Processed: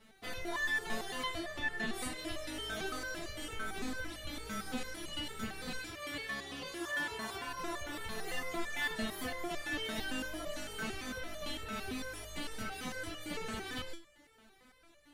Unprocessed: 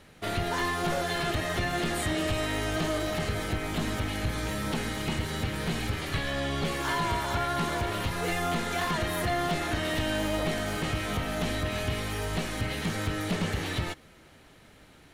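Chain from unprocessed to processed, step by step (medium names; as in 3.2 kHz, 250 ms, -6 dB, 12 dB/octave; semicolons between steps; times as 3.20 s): 1.39–1.93 s: treble shelf 5.5 kHz -10 dB; 5.79–7.47 s: high-pass 110 Hz 6 dB/octave; resonator arpeggio 8.9 Hz 220–590 Hz; trim +7 dB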